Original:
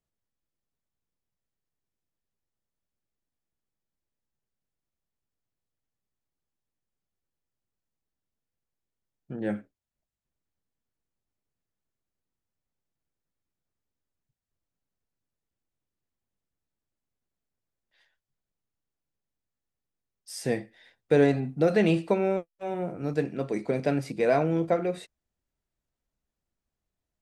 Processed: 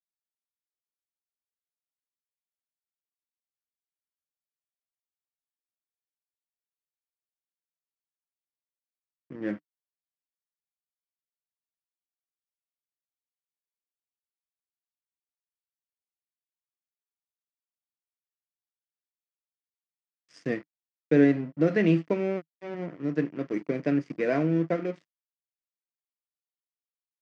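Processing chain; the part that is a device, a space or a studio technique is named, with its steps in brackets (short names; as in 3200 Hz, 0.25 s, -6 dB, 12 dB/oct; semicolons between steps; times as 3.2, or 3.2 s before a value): blown loudspeaker (crossover distortion -39 dBFS; speaker cabinet 130–5700 Hz, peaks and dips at 160 Hz +7 dB, 300 Hz +10 dB, 820 Hz -9 dB, 1900 Hz +6 dB, 3900 Hz -8 dB); gain -2.5 dB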